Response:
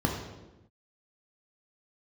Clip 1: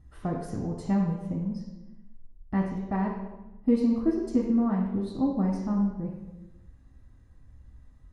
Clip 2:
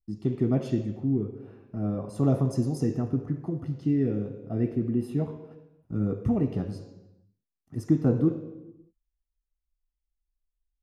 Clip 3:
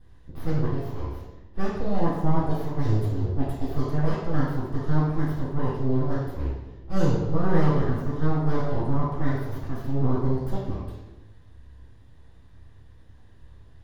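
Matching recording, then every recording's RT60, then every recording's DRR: 1; no single decay rate, no single decay rate, no single decay rate; -2.0 dB, 4.5 dB, -8.0 dB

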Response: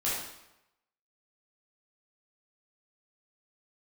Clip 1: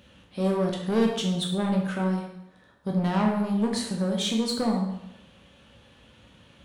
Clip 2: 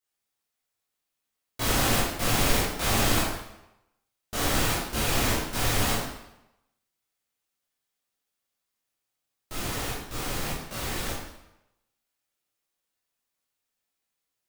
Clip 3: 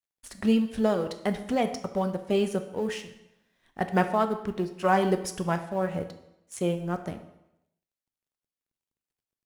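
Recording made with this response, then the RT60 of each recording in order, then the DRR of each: 2; 0.90 s, 0.90 s, 0.90 s; -0.5 dB, -8.5 dB, 8.0 dB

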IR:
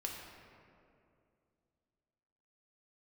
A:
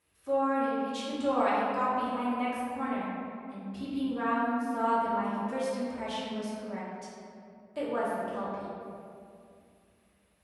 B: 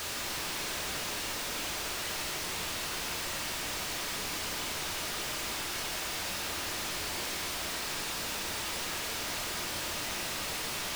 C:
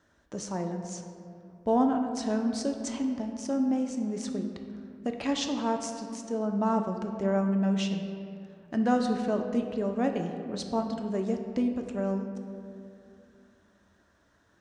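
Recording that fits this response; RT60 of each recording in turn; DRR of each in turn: B; 2.5 s, 2.5 s, 2.5 s; -10.0 dB, -1.0 dB, 3.5 dB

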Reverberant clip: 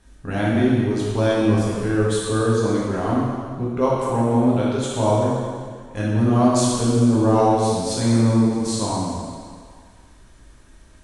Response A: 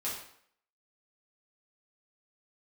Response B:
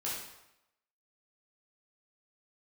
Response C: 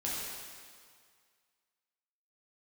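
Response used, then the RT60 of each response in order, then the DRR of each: C; 0.65 s, 0.85 s, 2.0 s; -8.5 dB, -7.5 dB, -7.0 dB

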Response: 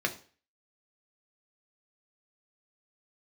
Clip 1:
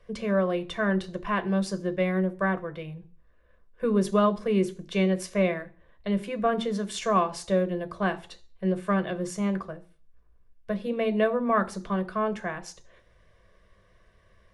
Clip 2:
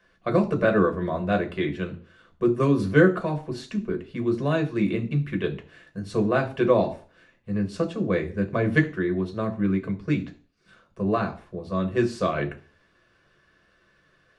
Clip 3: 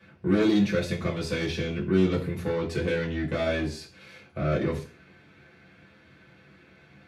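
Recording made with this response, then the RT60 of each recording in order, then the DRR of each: 2; 0.40 s, 0.40 s, 0.40 s; 8.5 dB, 3.0 dB, -5.0 dB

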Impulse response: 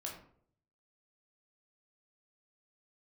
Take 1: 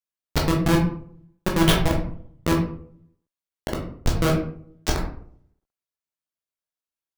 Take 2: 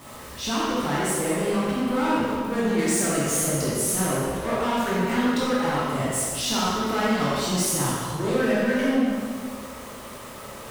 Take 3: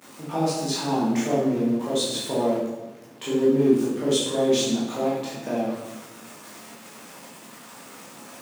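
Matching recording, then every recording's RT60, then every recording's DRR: 1; 0.60 s, 2.0 s, 1.1 s; -1.5 dB, -8.5 dB, -9.5 dB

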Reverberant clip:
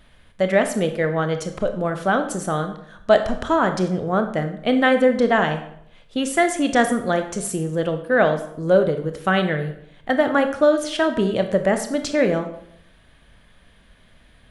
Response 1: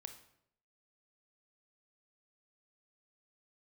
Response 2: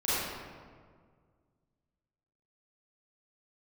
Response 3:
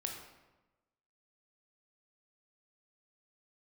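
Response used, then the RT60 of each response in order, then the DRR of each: 1; 0.70 s, 1.8 s, 1.1 s; 7.0 dB, -12.5 dB, 1.5 dB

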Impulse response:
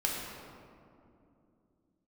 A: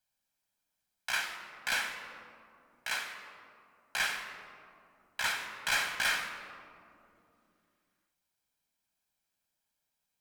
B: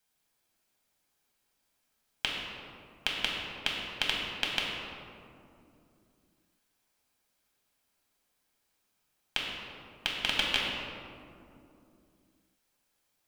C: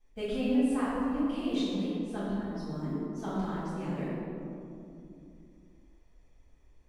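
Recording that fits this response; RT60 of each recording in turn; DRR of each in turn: B; 2.7 s, 2.7 s, 2.7 s; 5.0 dB, -3.5 dB, -13.0 dB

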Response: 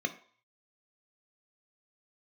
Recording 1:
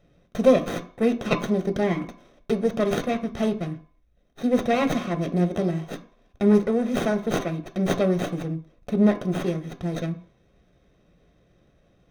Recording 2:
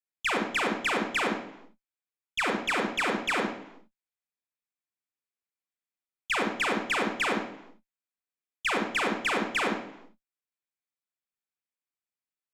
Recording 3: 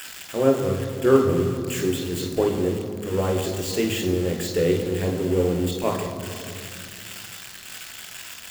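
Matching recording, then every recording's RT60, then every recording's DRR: 1; 0.50 s, no single decay rate, 2.5 s; 6.5 dB, 0.5 dB, 2.0 dB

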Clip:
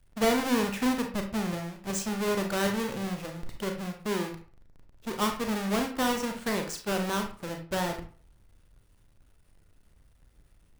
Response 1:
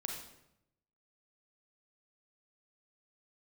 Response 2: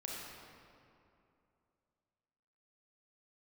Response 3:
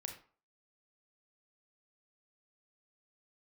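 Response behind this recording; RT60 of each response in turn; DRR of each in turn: 3; 0.80 s, 2.7 s, 0.45 s; 1.0 dB, -4.0 dB, 3.5 dB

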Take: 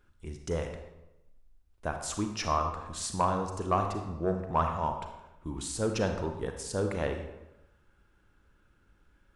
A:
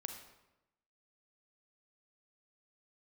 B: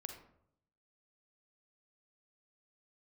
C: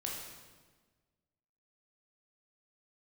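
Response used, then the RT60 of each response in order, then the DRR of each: A; 0.95 s, 0.70 s, 1.4 s; 5.0 dB, 4.5 dB, -2.5 dB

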